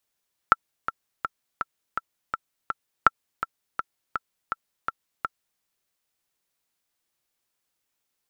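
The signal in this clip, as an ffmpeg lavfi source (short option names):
-f lavfi -i "aevalsrc='pow(10,(-1-12*gte(mod(t,7*60/165),60/165))/20)*sin(2*PI*1340*mod(t,60/165))*exp(-6.91*mod(t,60/165)/0.03)':d=5.09:s=44100"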